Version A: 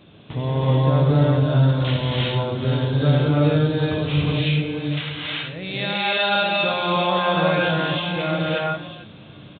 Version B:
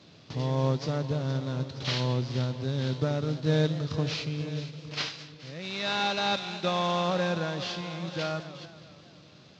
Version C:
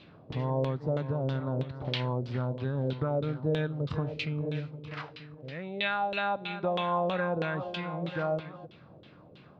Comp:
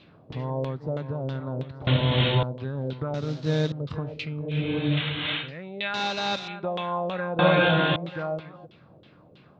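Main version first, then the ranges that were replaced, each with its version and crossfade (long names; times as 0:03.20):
C
0:01.87–0:02.43: punch in from A
0:03.14–0:03.72: punch in from B
0:04.60–0:05.43: punch in from A, crossfade 0.24 s
0:05.94–0:06.48: punch in from B
0:07.39–0:07.96: punch in from A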